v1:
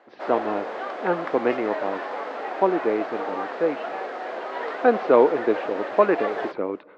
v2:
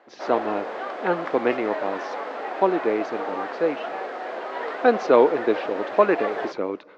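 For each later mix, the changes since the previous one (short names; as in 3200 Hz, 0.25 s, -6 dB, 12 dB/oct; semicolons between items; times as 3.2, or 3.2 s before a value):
speech: remove Gaussian blur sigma 2.6 samples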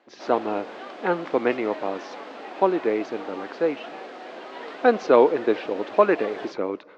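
background: add band shelf 910 Hz -8 dB 2.6 oct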